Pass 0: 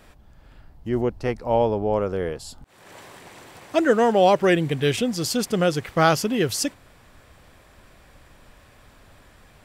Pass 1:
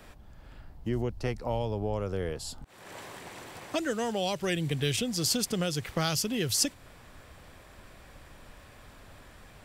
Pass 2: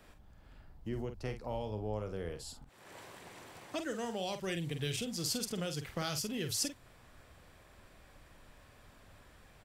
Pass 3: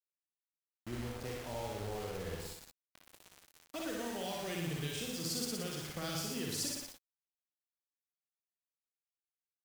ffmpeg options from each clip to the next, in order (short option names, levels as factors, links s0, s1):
-filter_complex "[0:a]acrossover=split=130|3000[s0][s1][s2];[s1]acompressor=threshold=0.0316:ratio=6[s3];[s0][s3][s2]amix=inputs=3:normalize=0"
-filter_complex "[0:a]asplit=2[s0][s1];[s1]adelay=47,volume=0.376[s2];[s0][s2]amix=inputs=2:normalize=0,volume=0.398"
-filter_complex "[0:a]asplit=2[s0][s1];[s1]aecho=0:1:118|236|354|472|590:0.501|0.19|0.0724|0.0275|0.0105[s2];[s0][s2]amix=inputs=2:normalize=0,acrusher=bits=6:mix=0:aa=0.000001,asplit=2[s3][s4];[s4]aecho=0:1:34|59|71:0.141|0.708|0.316[s5];[s3][s5]amix=inputs=2:normalize=0,volume=0.531"